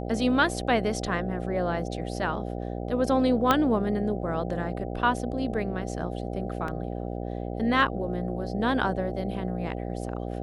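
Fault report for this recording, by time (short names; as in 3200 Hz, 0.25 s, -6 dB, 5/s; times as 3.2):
buzz 60 Hz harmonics 13 -33 dBFS
3.51 pop -7 dBFS
6.68 gap 2.6 ms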